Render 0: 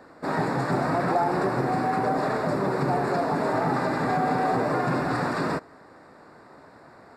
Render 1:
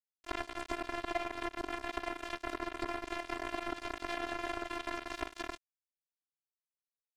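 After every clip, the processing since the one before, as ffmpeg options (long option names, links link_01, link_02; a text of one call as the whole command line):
ffmpeg -i in.wav -af "acrusher=bits=2:mix=0:aa=0.5,acompressor=threshold=-33dB:ratio=5,afftfilt=real='hypot(re,im)*cos(PI*b)':imag='0':win_size=512:overlap=0.75,volume=4.5dB" out.wav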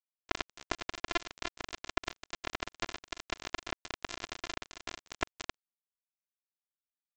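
ffmpeg -i in.wav -af "equalizer=frequency=2800:width_type=o:width=2:gain=-4.5,aresample=16000,acrusher=bits=3:mix=0:aa=0.5,aresample=44100,volume=6dB" out.wav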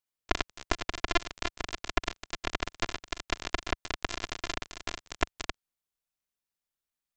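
ffmpeg -i in.wav -af "lowshelf=frequency=76:gain=10.5,volume=4.5dB" out.wav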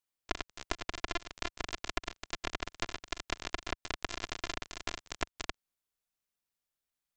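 ffmpeg -i in.wav -af "acompressor=threshold=-30dB:ratio=6" out.wav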